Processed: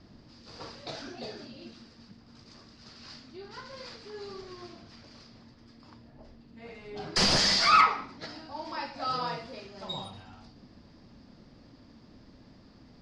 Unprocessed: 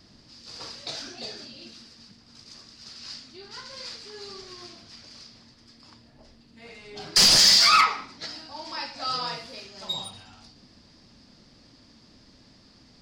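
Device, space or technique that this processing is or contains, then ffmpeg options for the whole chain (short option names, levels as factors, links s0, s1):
through cloth: -af "lowpass=7400,highshelf=f=2400:g=-14,volume=1.33"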